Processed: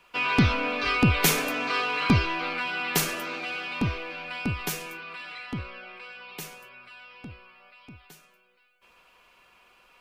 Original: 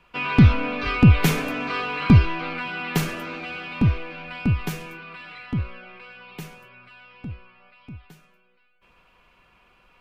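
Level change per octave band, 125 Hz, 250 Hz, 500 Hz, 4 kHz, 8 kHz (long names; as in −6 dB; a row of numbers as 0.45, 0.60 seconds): −10.0, −6.5, −1.0, +3.0, +7.5 decibels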